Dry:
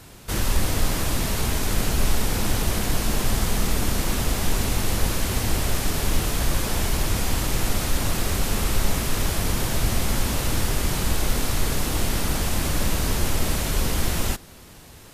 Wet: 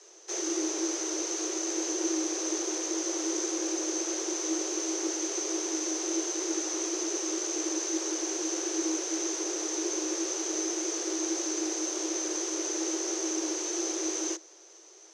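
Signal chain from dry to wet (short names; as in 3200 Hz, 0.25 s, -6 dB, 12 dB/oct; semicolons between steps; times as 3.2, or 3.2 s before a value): wow and flutter 120 cents; ladder low-pass 6000 Hz, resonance 90%; frequency shift +310 Hz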